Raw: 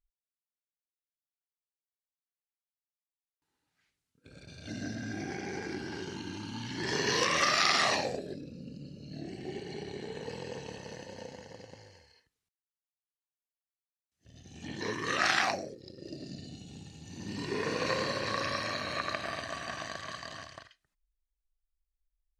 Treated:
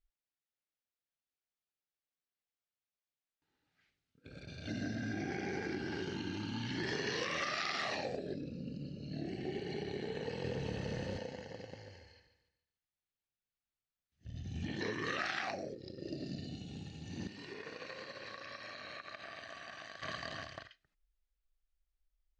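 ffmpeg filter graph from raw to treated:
ffmpeg -i in.wav -filter_complex "[0:a]asettb=1/sr,asplit=3[link_01][link_02][link_03];[link_01]atrim=end=10.444[link_04];[link_02]atrim=start=10.44:end=11.18,asetpts=PTS-STARTPTS,afade=type=in:duration=0.004:curve=qsin,afade=type=out:start_time=0.736:duration=0.004:curve=qsin,aeval=exprs='val(0)+0.5*0.00531*sgn(val(0))':channel_layout=same,lowpass=10000,lowshelf=frequency=200:gain=11[link_05];[link_03]atrim=start=11.176[link_06];[link_04][link_05]acrossfade=duration=0.004:curve1=hsin:curve2=qsin[link_07];[link_07][link_06]acrossfade=duration=0.004:curve1=qsin:curve2=hsin,asettb=1/sr,asplit=3[link_08][link_09][link_10];[link_08]atrim=end=11.734[link_11];[link_09]atrim=start=11.73:end=14.67,asetpts=PTS-STARTPTS,afade=type=in:duration=0.004:curve=qsin,afade=type=out:start_time=2.936:duration=0.004:curve=qsin,asubboost=boost=4.5:cutoff=210,aecho=1:1:144|288|432|576:0.299|0.113|0.0431|0.0164,atrim=end_sample=129654[link_12];[link_10]atrim=start=14.666[link_13];[link_11][link_12]acrossfade=duration=0.004:curve1=hsin:curve2=qsin[link_14];[link_14][link_13]acrossfade=duration=0.004:curve1=qsin:curve2=hsin,asettb=1/sr,asplit=3[link_15][link_16][link_17];[link_15]atrim=end=17.274[link_18];[link_16]atrim=start=17.27:end=20.02,asetpts=PTS-STARTPTS,afade=type=in:duration=0.004:curve=qsin,afade=type=out:start_time=2.746:duration=0.004:curve=qsin,agate=range=-8dB:threshold=-33dB:ratio=16:release=100:detection=peak,lowshelf=frequency=390:gain=-10,acompressor=threshold=-43dB:ratio=8:attack=3.2:release=140:knee=1:detection=peak[link_19];[link_17]atrim=start=20.016[link_20];[link_18][link_19]acrossfade=duration=0.004:curve1=hsin:curve2=qsin[link_21];[link_21][link_20]acrossfade=duration=0.004:curve1=qsin:curve2=hsin,lowpass=4400,equalizer=frequency=1000:width=5.1:gain=-7.5,acompressor=threshold=-36dB:ratio=6,volume=1.5dB" out.wav

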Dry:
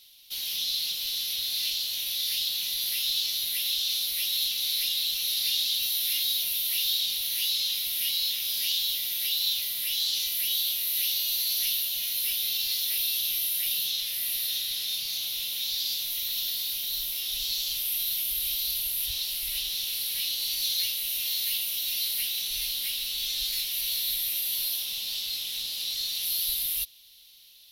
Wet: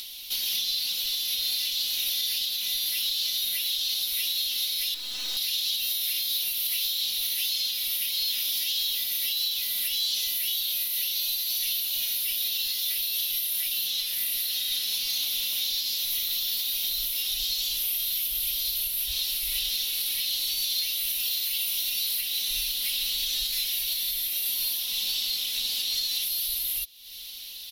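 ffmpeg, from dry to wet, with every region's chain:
ffmpeg -i in.wav -filter_complex "[0:a]asettb=1/sr,asplit=3[link_01][link_02][link_03];[link_01]atrim=end=4.944[link_04];[link_02]atrim=start=4.94:end=5.37,asetpts=PTS-STARTPTS,afade=type=in:duration=0.004:curve=qsin,afade=type=out:start_time=0.426:duration=0.004:curve=qsin,lowpass=frequency=7800:width=0.5412,lowpass=frequency=7800:width=1.3066,aeval=exprs='(tanh(63.1*val(0)+0.3)-tanh(0.3))/63.1':channel_layout=same[link_05];[link_03]atrim=start=5.366[link_06];[link_04][link_05]acrossfade=duration=0.004:curve1=hsin:curve2=qsin[link_07];[link_07][link_06]acrossfade=duration=0.004:curve1=qsin:curve2=hsin,aecho=1:1:4:0.88,alimiter=limit=-23dB:level=0:latency=1:release=459,acompressor=mode=upward:threshold=-37dB:ratio=2.5,volume=5dB" out.wav

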